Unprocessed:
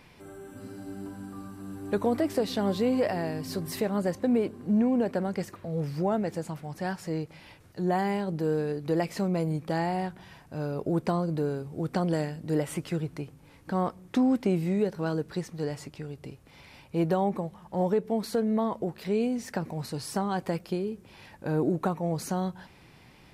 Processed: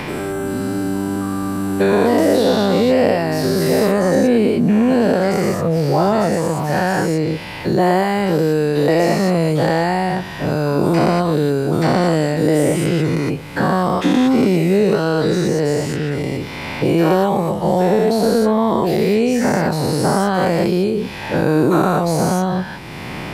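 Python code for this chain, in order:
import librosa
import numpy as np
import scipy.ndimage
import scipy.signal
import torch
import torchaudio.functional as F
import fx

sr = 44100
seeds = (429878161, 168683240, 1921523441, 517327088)

y = fx.spec_dilate(x, sr, span_ms=240)
y = fx.band_squash(y, sr, depth_pct=70)
y = y * 10.0 ** (7.0 / 20.0)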